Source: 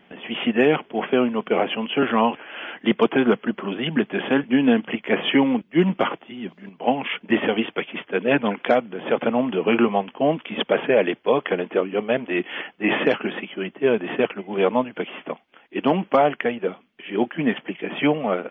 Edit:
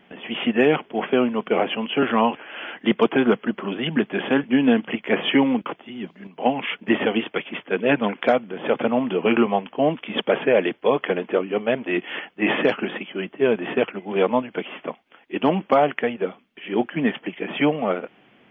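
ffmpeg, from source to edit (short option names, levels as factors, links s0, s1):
-filter_complex "[0:a]asplit=2[s0][s1];[s0]atrim=end=5.662[s2];[s1]atrim=start=6.078[s3];[s2][s3]acrossfade=d=0.004:c1=hsin:c2=hsin"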